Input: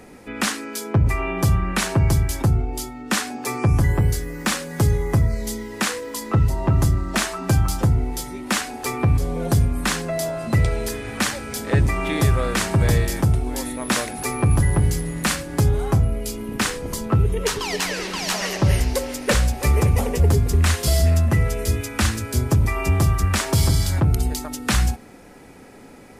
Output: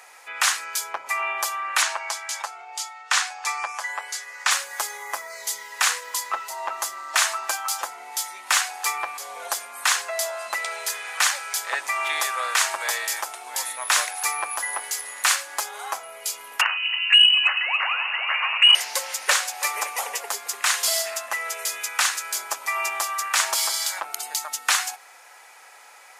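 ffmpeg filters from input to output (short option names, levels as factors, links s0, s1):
-filter_complex "[0:a]asettb=1/sr,asplit=3[s0][s1][s2];[s0]atrim=end=1.824[s3];[s1]atrim=start=1.82:end=4.51,asetpts=PTS-STARTPTS,afade=t=in:d=0.004:c=qsin,afade=t=out:st=2.686:d=0.004:c=qsin,highpass=570,lowpass=7500[s4];[s2]atrim=start=4.506[s5];[s3][s4]acrossfade=d=0.004:c1=hsin:c2=qsin[s6];[s6][s5]acrossfade=d=0.004:c1=qsin:c2=hsin,asettb=1/sr,asplit=3[s7][s8][s9];[s7]atrim=end=16.614[s10];[s8]atrim=start=16.61:end=18.75,asetpts=PTS-STARTPTS,afade=t=in:d=0.004:c=qsin,afade=t=out:st=2.136:d=0.004:c=qsin,lowpass=f=2600:t=q:w=0.5098,lowpass=f=2600:t=q:w=0.6013,lowpass=f=2600:t=q:w=0.9,lowpass=f=2600:t=q:w=2.563,afreqshift=-3000[s11];[s9]atrim=start=18.746[s12];[s10][s11]acrossfade=d=0.004:c1=hsin:c2=qsin[s13];[s13][s12]acrossfade=d=0.004:c1=qsin:c2=hsin,highpass=f=820:w=0.5412,highpass=f=820:w=1.3066,equalizer=f=6700:w=4.5:g=3.5,acontrast=36,volume=0.794"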